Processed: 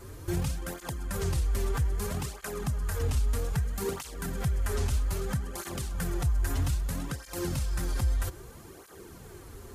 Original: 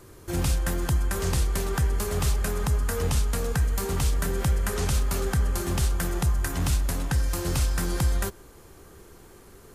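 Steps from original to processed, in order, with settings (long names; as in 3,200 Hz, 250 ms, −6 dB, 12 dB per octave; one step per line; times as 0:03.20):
low-shelf EQ 110 Hz +6.5 dB
brickwall limiter −24 dBFS, peak gain reduction 13 dB
through-zero flanger with one copy inverted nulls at 0.62 Hz, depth 6.7 ms
level +4.5 dB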